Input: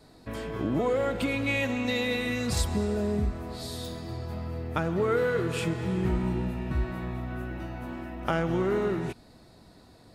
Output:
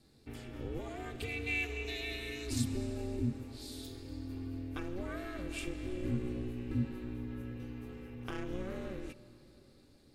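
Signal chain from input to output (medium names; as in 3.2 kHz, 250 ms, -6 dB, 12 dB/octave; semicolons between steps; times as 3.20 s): amplifier tone stack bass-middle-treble 6-0-2; band-stop 2.4 kHz, Q 21; small resonant body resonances 600/2500 Hz, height 11 dB, ringing for 45 ms; ring modulator 180 Hz; on a send: reverberation RT60 4.3 s, pre-delay 28 ms, DRR 16 dB; on the sum: trim +10 dB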